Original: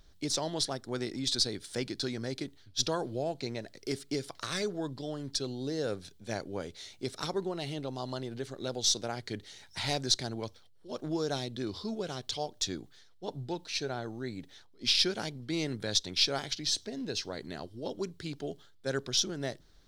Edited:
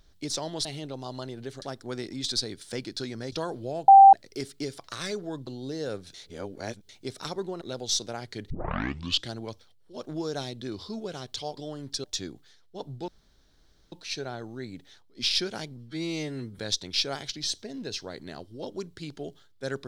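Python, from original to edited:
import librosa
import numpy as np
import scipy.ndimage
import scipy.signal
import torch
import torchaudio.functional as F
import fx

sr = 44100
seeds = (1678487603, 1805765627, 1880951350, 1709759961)

y = fx.edit(x, sr, fx.cut(start_s=2.35, length_s=0.48),
    fx.bleep(start_s=3.39, length_s=0.25, hz=784.0, db=-8.0),
    fx.move(start_s=4.98, length_s=0.47, to_s=12.52),
    fx.reverse_span(start_s=6.12, length_s=0.75),
    fx.move(start_s=7.59, length_s=0.97, to_s=0.65),
    fx.tape_start(start_s=9.45, length_s=0.84),
    fx.insert_room_tone(at_s=13.56, length_s=0.84),
    fx.stretch_span(start_s=15.41, length_s=0.41, factor=2.0), tone=tone)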